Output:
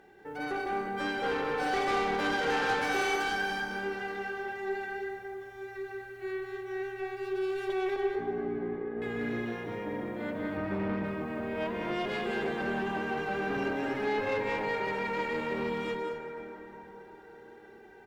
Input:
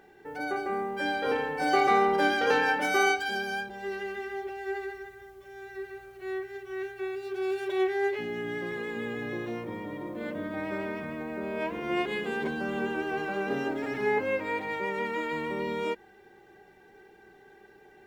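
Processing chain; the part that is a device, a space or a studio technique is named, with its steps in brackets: 7.96–9.02 s: Bessel low-pass 600 Hz, order 2; 10.57–11.04 s: tilt EQ -2.5 dB/octave; loudspeakers at several distances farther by 66 m -6 dB, 82 m -12 dB; tube preamp driven hard (valve stage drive 26 dB, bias 0.4; treble shelf 6.2 kHz -4 dB); plate-style reverb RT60 5 s, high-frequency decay 0.4×, DRR 6 dB

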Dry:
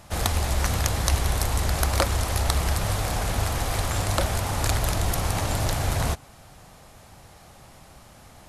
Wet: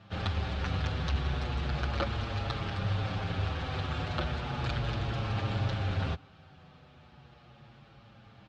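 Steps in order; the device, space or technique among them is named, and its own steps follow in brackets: barber-pole flanger into a guitar amplifier (endless flanger 7.1 ms -0.35 Hz; saturation -15 dBFS, distortion -23 dB; cabinet simulation 86–3600 Hz, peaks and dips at 130 Hz +3 dB, 310 Hz -3 dB, 460 Hz -3 dB, 660 Hz -7 dB, 980 Hz -8 dB, 2 kHz -7 dB)

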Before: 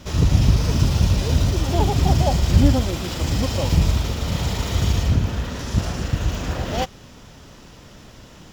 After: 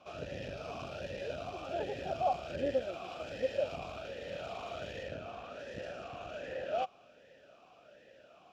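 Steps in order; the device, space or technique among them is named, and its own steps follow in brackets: talk box (valve stage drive 9 dB, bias 0.45; talking filter a-e 1.3 Hz); trim +1 dB

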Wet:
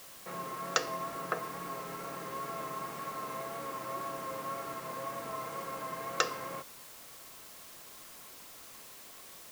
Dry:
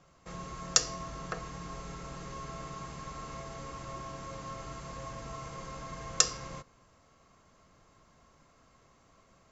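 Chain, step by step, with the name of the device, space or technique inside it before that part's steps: wax cylinder (band-pass 280–2400 Hz; wow and flutter 29 cents; white noise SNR 11 dB); trim +5 dB

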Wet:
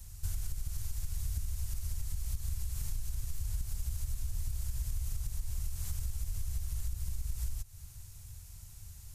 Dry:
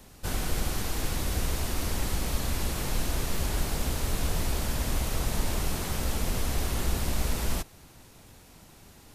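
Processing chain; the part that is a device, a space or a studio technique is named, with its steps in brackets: FFT filter 100 Hz 0 dB, 240 Hz -28 dB, 450 Hz -28 dB, 1.3 kHz -20 dB, 3.6 kHz -16 dB, 6.9 kHz -5 dB; serial compression, leveller first (compression 2.5:1, threshold -28 dBFS, peak gain reduction 5.5 dB; compression 5:1, threshold -40 dBFS, peak gain reduction 13.5 dB); trim +8 dB

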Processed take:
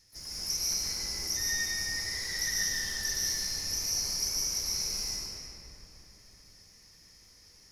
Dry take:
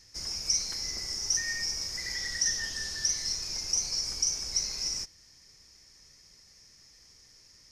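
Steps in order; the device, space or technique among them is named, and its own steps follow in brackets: shimmer-style reverb (harmony voices +12 st -12 dB; reverberation RT60 3.3 s, pre-delay 109 ms, DRR -7.5 dB); trim -7 dB

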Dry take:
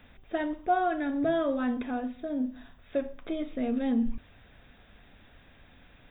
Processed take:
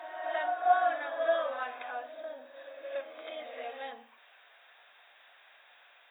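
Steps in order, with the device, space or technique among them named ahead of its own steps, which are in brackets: ghost voice (reverse; reverberation RT60 2.3 s, pre-delay 9 ms, DRR 2 dB; reverse; high-pass 670 Hz 24 dB/octave)

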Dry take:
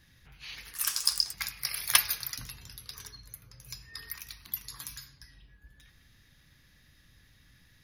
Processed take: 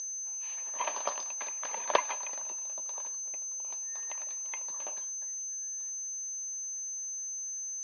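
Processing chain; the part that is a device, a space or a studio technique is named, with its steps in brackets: toy sound module (decimation joined by straight lines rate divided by 4×; class-D stage that switches slowly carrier 6.2 kHz; cabinet simulation 580–4700 Hz, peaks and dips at 580 Hz +9 dB, 960 Hz +9 dB, 1.4 kHz -8 dB, 2.1 kHz -8 dB, 3.3 kHz -3 dB, 4.7 kHz +6 dB); trim -1 dB

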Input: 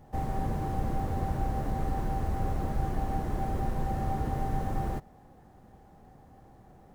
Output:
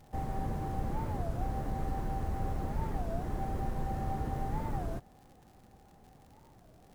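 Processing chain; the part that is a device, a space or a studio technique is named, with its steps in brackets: warped LP (warped record 33 1/3 rpm, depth 250 cents; crackle 100 per s -46 dBFS; pink noise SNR 39 dB); trim -4 dB

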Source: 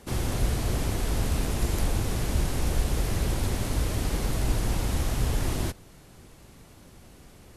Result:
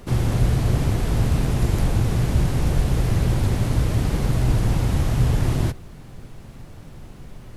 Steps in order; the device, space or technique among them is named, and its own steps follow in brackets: car interior (peaking EQ 130 Hz +9 dB 0.96 oct; treble shelf 4.1 kHz -7 dB; brown noise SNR 20 dB); trim +4 dB

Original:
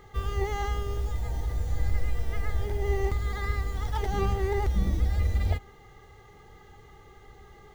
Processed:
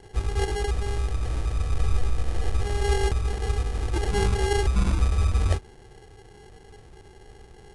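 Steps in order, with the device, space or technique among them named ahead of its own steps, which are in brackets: crushed at another speed (playback speed 2×; sample-and-hold 18×; playback speed 0.5×); trim +3.5 dB

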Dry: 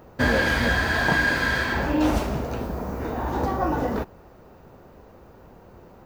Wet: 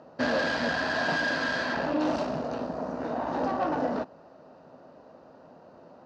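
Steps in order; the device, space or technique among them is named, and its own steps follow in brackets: guitar amplifier (valve stage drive 23 dB, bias 0.6; tone controls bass -11 dB, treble +13 dB; cabinet simulation 100–4100 Hz, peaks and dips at 160 Hz +8 dB, 260 Hz +9 dB, 390 Hz -4 dB, 620 Hz +8 dB, 2.2 kHz -9 dB, 3.4 kHz -8 dB)

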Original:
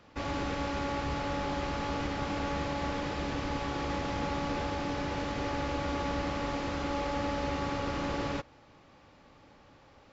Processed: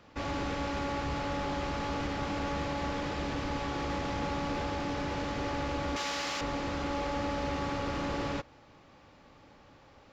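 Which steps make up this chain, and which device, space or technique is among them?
5.96–6.41 s: tilt EQ +4.5 dB/octave; parallel distortion (in parallel at -5.5 dB: hard clipper -33.5 dBFS, distortion -9 dB); on the sum: trim -3 dB

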